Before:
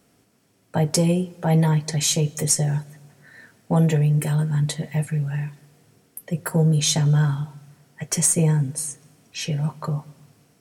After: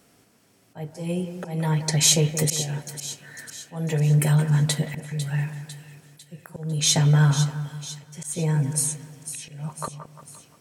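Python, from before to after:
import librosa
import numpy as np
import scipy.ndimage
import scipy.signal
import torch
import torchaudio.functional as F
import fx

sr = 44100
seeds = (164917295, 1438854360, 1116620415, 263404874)

y = fx.low_shelf(x, sr, hz=470.0, db=-4.0)
y = fx.auto_swell(y, sr, attack_ms=450.0)
y = fx.echo_split(y, sr, split_hz=2500.0, low_ms=175, high_ms=500, feedback_pct=52, wet_db=-10.5)
y = F.gain(torch.from_numpy(y), 4.0).numpy()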